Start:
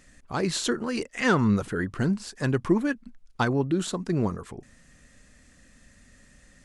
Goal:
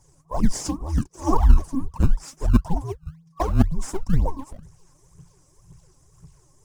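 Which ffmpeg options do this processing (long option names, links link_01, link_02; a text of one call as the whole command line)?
ffmpeg -i in.wav -filter_complex "[0:a]afftfilt=real='re*(1-between(b*sr/4096,1300,5000))':imag='im*(1-between(b*sr/4096,1300,5000))':win_size=4096:overlap=0.75,afreqshift=-170,aphaser=in_gain=1:out_gain=1:delay=3.9:decay=0.79:speed=1.9:type=triangular,asplit=2[link_01][link_02];[link_02]acrusher=samples=19:mix=1:aa=0.000001:lfo=1:lforange=30.4:lforate=2,volume=-10.5dB[link_03];[link_01][link_03]amix=inputs=2:normalize=0,equalizer=frequency=1300:width=1.2:gain=5.5,volume=-4dB" out.wav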